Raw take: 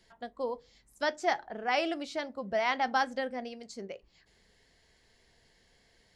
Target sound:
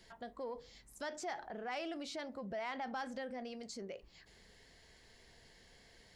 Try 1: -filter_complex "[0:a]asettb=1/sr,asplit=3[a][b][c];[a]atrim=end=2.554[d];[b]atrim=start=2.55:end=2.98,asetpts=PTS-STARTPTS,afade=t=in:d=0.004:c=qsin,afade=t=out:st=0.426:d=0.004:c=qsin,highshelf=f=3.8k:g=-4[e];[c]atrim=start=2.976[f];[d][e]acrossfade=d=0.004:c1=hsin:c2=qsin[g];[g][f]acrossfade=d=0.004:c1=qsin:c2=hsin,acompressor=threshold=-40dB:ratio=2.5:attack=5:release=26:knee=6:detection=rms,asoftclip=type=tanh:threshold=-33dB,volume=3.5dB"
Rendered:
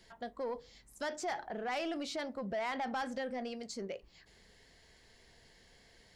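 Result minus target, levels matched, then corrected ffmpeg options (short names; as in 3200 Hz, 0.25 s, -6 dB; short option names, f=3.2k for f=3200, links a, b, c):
compressor: peak gain reduction -6 dB
-filter_complex "[0:a]asettb=1/sr,asplit=3[a][b][c];[a]atrim=end=2.554[d];[b]atrim=start=2.55:end=2.98,asetpts=PTS-STARTPTS,afade=t=in:d=0.004:c=qsin,afade=t=out:st=0.426:d=0.004:c=qsin,highshelf=f=3.8k:g=-4[e];[c]atrim=start=2.976[f];[d][e]acrossfade=d=0.004:c1=hsin:c2=qsin[g];[g][f]acrossfade=d=0.004:c1=qsin:c2=hsin,acompressor=threshold=-50dB:ratio=2.5:attack=5:release=26:knee=6:detection=rms,asoftclip=type=tanh:threshold=-33dB,volume=3.5dB"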